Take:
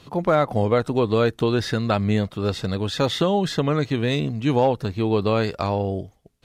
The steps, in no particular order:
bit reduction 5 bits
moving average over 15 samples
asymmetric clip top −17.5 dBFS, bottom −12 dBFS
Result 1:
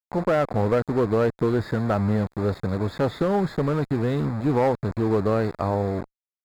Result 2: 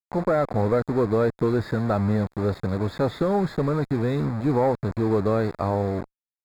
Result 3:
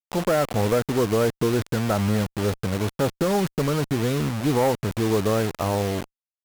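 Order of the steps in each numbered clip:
bit reduction, then moving average, then asymmetric clip
bit reduction, then asymmetric clip, then moving average
moving average, then bit reduction, then asymmetric clip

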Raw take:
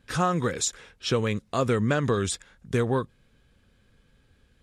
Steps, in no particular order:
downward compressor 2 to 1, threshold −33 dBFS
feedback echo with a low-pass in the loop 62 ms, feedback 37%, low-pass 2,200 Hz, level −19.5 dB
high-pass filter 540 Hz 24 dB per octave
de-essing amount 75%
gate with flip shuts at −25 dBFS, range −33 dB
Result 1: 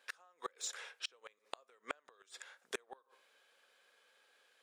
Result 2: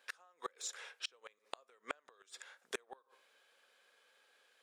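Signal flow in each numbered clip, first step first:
high-pass filter, then de-essing, then downward compressor, then feedback echo with a low-pass in the loop, then gate with flip
high-pass filter, then downward compressor, then de-essing, then feedback echo with a low-pass in the loop, then gate with flip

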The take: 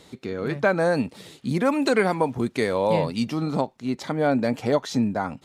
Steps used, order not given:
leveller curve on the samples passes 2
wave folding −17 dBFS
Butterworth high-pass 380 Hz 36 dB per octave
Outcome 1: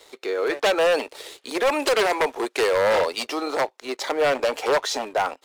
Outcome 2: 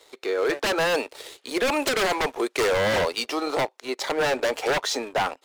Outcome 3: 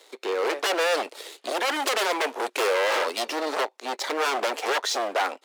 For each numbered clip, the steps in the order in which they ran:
wave folding, then Butterworth high-pass, then leveller curve on the samples
Butterworth high-pass, then leveller curve on the samples, then wave folding
leveller curve on the samples, then wave folding, then Butterworth high-pass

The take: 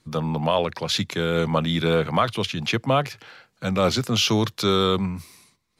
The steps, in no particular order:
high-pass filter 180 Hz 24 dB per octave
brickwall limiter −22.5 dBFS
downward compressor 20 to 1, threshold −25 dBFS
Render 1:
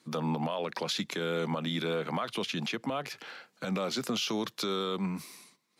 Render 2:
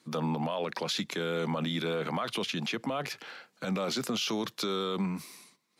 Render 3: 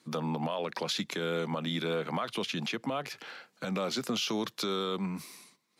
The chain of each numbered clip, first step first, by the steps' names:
high-pass filter, then downward compressor, then brickwall limiter
high-pass filter, then brickwall limiter, then downward compressor
downward compressor, then high-pass filter, then brickwall limiter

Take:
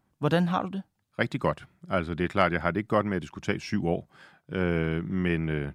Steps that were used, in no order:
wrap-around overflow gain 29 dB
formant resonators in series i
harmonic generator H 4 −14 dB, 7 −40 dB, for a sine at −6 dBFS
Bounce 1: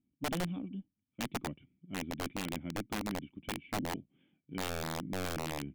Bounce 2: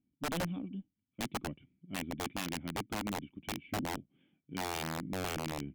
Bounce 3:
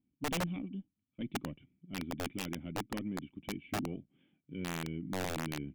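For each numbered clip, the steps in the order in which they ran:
formant resonators in series, then harmonic generator, then wrap-around overflow
formant resonators in series, then wrap-around overflow, then harmonic generator
harmonic generator, then formant resonators in series, then wrap-around overflow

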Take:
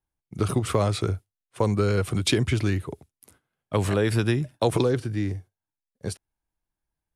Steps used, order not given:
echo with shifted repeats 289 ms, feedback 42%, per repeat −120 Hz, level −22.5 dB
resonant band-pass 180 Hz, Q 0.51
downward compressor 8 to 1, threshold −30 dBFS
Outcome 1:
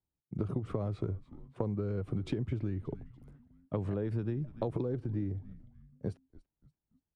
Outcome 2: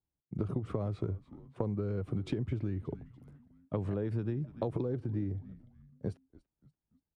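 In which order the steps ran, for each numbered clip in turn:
resonant band-pass, then echo with shifted repeats, then downward compressor
echo with shifted repeats, then resonant band-pass, then downward compressor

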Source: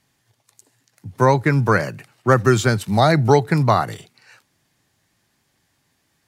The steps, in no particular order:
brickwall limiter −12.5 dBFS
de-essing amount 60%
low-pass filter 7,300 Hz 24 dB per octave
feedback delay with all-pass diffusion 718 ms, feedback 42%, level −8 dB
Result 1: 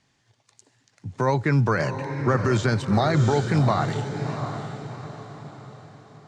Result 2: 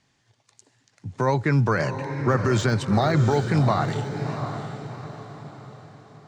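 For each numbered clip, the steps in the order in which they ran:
brickwall limiter, then feedback delay with all-pass diffusion, then de-essing, then low-pass filter
low-pass filter, then de-essing, then brickwall limiter, then feedback delay with all-pass diffusion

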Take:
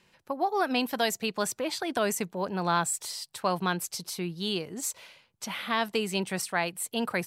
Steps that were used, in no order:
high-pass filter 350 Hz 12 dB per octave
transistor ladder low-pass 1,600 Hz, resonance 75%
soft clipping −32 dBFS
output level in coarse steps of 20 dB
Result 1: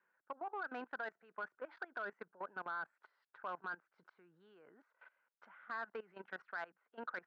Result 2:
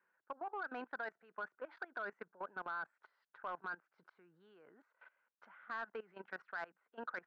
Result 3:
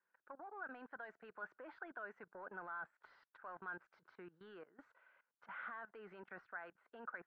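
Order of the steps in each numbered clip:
transistor ladder low-pass, then output level in coarse steps, then soft clipping, then high-pass filter
transistor ladder low-pass, then output level in coarse steps, then high-pass filter, then soft clipping
high-pass filter, then output level in coarse steps, then soft clipping, then transistor ladder low-pass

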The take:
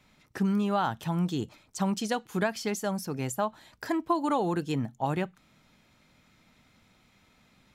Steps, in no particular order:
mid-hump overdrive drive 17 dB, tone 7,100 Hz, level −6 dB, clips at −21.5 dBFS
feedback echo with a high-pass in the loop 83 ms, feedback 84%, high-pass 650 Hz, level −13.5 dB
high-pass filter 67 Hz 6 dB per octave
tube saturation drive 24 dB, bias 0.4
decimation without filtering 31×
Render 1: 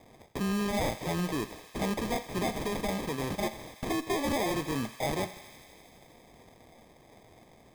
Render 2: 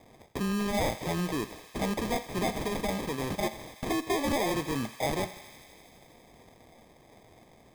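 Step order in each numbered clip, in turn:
high-pass filter, then mid-hump overdrive, then tube saturation, then decimation without filtering, then feedback echo with a high-pass in the loop
high-pass filter, then tube saturation, then mid-hump overdrive, then decimation without filtering, then feedback echo with a high-pass in the loop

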